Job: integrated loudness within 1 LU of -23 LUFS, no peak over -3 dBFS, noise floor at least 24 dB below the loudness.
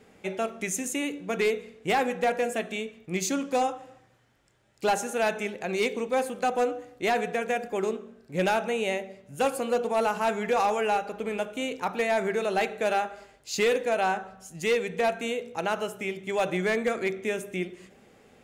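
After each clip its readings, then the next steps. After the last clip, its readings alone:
clipped 0.7%; flat tops at -18.5 dBFS; loudness -28.5 LUFS; peak -18.5 dBFS; loudness target -23.0 LUFS
-> clip repair -18.5 dBFS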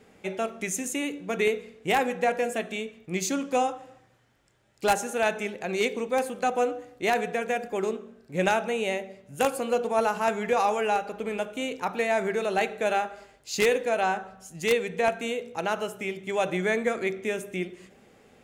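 clipped 0.0%; loudness -28.0 LUFS; peak -9.5 dBFS; loudness target -23.0 LUFS
-> gain +5 dB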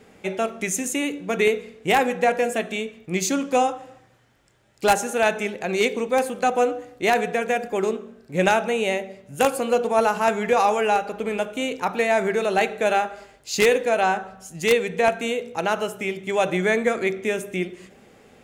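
loudness -22.5 LUFS; peak -4.5 dBFS; noise floor -54 dBFS

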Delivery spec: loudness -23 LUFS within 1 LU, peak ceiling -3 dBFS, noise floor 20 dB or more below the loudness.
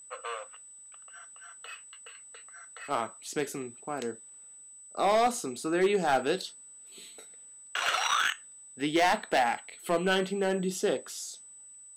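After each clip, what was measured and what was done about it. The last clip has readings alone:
clipped 0.6%; flat tops at -19.0 dBFS; steady tone 8000 Hz; tone level -48 dBFS; loudness -29.5 LUFS; peak -19.0 dBFS; loudness target -23.0 LUFS
-> clip repair -19 dBFS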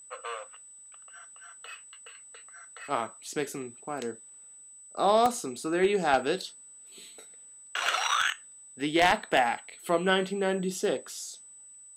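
clipped 0.0%; steady tone 8000 Hz; tone level -48 dBFS
-> notch 8000 Hz, Q 30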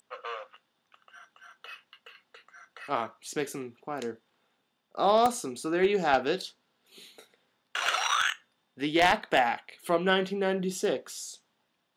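steady tone none; loudness -28.5 LUFS; peak -10.0 dBFS; loudness target -23.0 LUFS
-> gain +5.5 dB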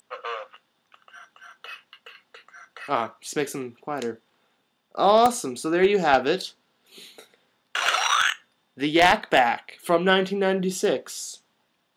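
loudness -23.0 LUFS; peak -4.5 dBFS; noise floor -71 dBFS

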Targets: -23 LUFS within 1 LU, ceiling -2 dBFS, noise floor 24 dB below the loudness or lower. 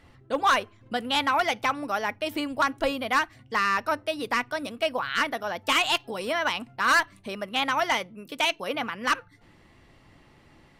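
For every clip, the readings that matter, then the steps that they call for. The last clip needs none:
loudness -26.5 LUFS; peak -15.5 dBFS; loudness target -23.0 LUFS
-> gain +3.5 dB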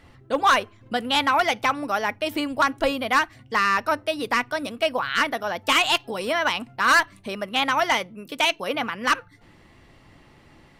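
loudness -23.0 LUFS; peak -12.0 dBFS; noise floor -54 dBFS

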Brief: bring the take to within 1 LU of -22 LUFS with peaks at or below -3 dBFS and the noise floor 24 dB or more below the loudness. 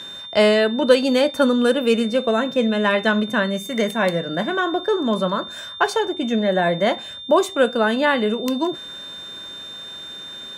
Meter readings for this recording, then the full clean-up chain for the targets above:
steady tone 3600 Hz; tone level -33 dBFS; loudness -19.5 LUFS; peak -1.0 dBFS; loudness target -22.0 LUFS
-> notch 3600 Hz, Q 30; gain -2.5 dB

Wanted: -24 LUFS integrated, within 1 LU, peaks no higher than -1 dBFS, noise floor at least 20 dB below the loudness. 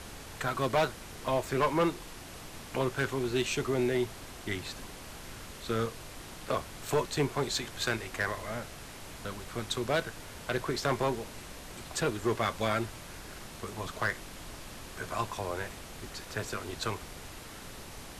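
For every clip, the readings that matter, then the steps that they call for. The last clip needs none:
clipped 0.7%; flat tops at -21.5 dBFS; noise floor -46 dBFS; noise floor target -53 dBFS; loudness -33.0 LUFS; peak -21.5 dBFS; loudness target -24.0 LUFS
-> clip repair -21.5 dBFS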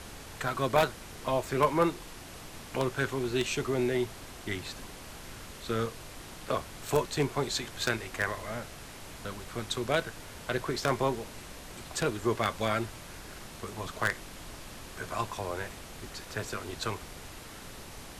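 clipped 0.0%; noise floor -46 dBFS; noise floor target -53 dBFS
-> noise print and reduce 7 dB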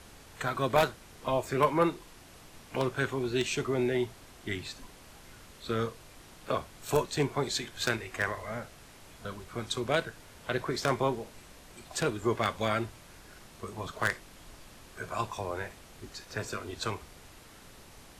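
noise floor -53 dBFS; loudness -32.5 LUFS; peak -12.5 dBFS; loudness target -24.0 LUFS
-> gain +8.5 dB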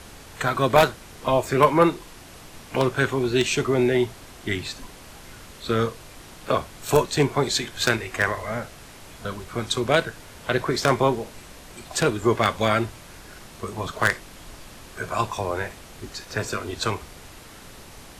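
loudness -24.0 LUFS; peak -4.0 dBFS; noise floor -45 dBFS

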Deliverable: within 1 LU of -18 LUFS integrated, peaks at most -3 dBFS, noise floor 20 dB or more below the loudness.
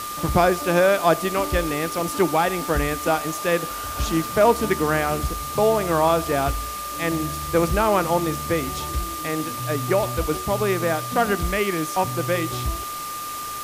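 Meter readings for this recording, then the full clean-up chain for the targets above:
steady tone 1200 Hz; tone level -30 dBFS; noise floor -31 dBFS; noise floor target -43 dBFS; loudness -22.5 LUFS; peak -4.5 dBFS; loudness target -18.0 LUFS
-> notch 1200 Hz, Q 30; denoiser 12 dB, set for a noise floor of -31 dBFS; gain +4.5 dB; limiter -3 dBFS

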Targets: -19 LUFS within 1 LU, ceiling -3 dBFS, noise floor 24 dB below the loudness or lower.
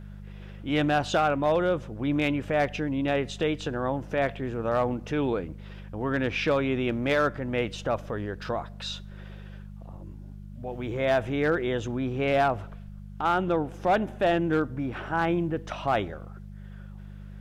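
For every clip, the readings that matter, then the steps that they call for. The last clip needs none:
clipped 0.4%; flat tops at -16.5 dBFS; hum 50 Hz; harmonics up to 200 Hz; hum level -39 dBFS; loudness -27.5 LUFS; peak -16.5 dBFS; loudness target -19.0 LUFS
-> clip repair -16.5 dBFS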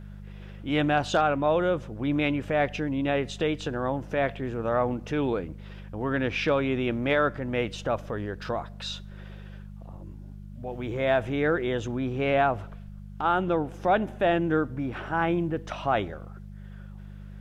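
clipped 0.0%; hum 50 Hz; harmonics up to 200 Hz; hum level -39 dBFS
-> de-hum 50 Hz, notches 4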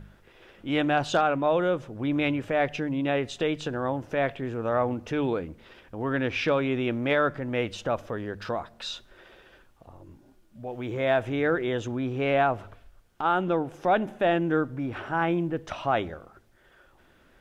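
hum none; loudness -27.5 LUFS; peak -10.5 dBFS; loudness target -19.0 LUFS
-> gain +8.5 dB; limiter -3 dBFS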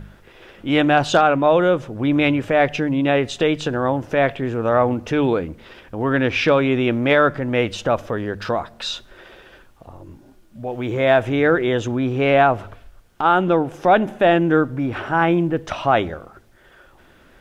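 loudness -19.0 LUFS; peak -3.0 dBFS; noise floor -51 dBFS

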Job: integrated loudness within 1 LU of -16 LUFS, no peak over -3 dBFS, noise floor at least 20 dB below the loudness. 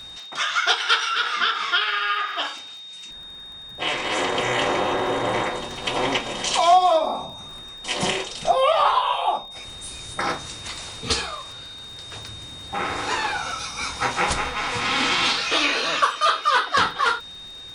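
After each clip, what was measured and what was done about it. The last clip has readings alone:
ticks 35/s; steady tone 3700 Hz; tone level -37 dBFS; loudness -22.0 LUFS; peak -7.0 dBFS; loudness target -16.0 LUFS
-> de-click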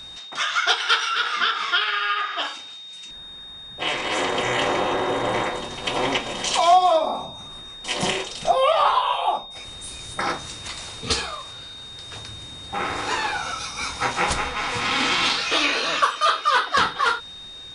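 ticks 0.056/s; steady tone 3700 Hz; tone level -37 dBFS
-> notch 3700 Hz, Q 30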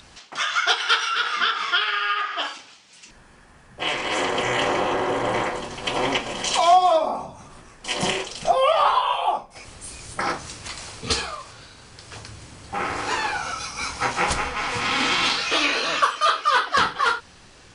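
steady tone none; loudness -22.0 LUFS; peak -7.0 dBFS; loudness target -16.0 LUFS
-> gain +6 dB; limiter -3 dBFS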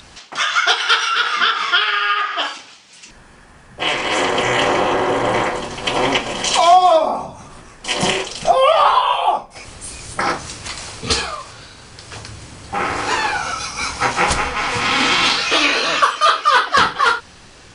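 loudness -16.5 LUFS; peak -3.0 dBFS; noise floor -44 dBFS

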